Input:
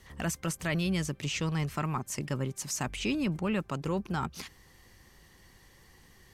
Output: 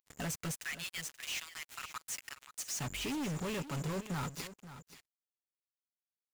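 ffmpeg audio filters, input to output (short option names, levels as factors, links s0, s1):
-filter_complex "[0:a]aeval=exprs='val(0)+0.5*0.00447*sgn(val(0))':c=same,asettb=1/sr,asplit=3[s0][s1][s2];[s0]atrim=end=0.514[s3];[s1]atrim=start=0.51:end=2.79,asetpts=PTS-STARTPTS,afade=t=in:d=0.004:c=qsin,afade=t=out:st=2.276:d=0.004:c=qsin,highpass=f=1400:w=0.5412,highpass=f=1400:w=1.3066[s4];[s2]atrim=start=2.786[s5];[s3][s4]acrossfade=d=0.004:c1=hsin:c2=qsin[s6];[s6][s5]acrossfade=d=0.004:c1=qsin:c2=hsin,agate=range=0.282:threshold=0.00398:ratio=16:detection=peak,highshelf=f=11000:g=-3,aecho=1:1:7.1:0.48,acompressor=mode=upward:threshold=0.00447:ratio=2.5,aeval=exprs='val(0)+0.00251*sin(2*PI*7100*n/s)':c=same,acrusher=bits=5:mix=0:aa=0.5,volume=56.2,asoftclip=hard,volume=0.0178,aecho=1:1:530:0.211"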